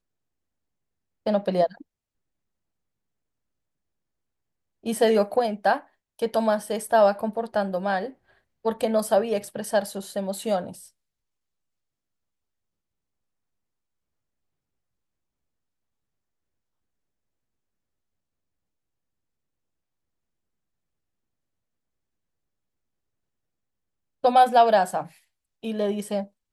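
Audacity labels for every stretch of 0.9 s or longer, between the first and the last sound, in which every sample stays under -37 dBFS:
1.820000	4.860000	silence
10.840000	24.240000	silence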